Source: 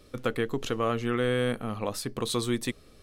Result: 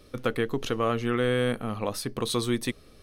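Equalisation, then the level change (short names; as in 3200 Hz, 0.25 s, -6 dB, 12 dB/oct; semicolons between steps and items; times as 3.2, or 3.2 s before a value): notch 7400 Hz, Q 6.8; +1.5 dB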